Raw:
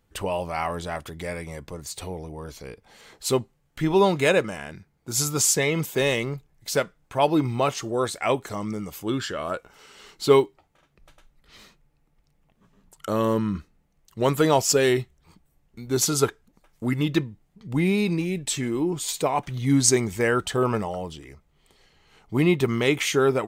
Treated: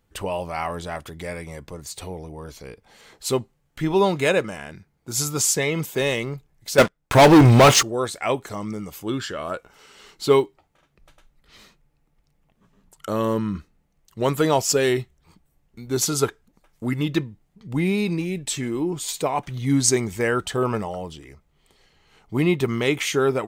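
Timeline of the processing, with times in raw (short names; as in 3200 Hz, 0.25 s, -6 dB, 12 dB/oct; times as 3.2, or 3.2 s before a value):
6.78–7.83 sample leveller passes 5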